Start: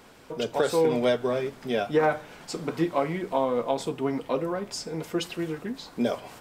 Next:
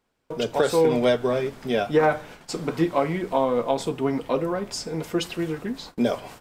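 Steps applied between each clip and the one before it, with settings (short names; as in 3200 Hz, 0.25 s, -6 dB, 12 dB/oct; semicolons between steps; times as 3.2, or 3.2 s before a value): low shelf 70 Hz +7.5 dB; gate -44 dBFS, range -26 dB; gain +3 dB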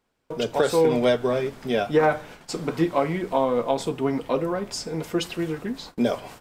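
nothing audible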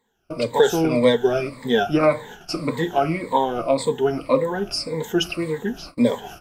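moving spectral ripple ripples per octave 1, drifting -1.8 Hz, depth 18 dB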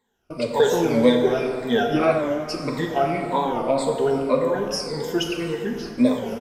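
downsampling 32000 Hz; plate-style reverb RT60 2.5 s, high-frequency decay 0.55×, DRR 2.5 dB; record warp 45 rpm, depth 100 cents; gain -3 dB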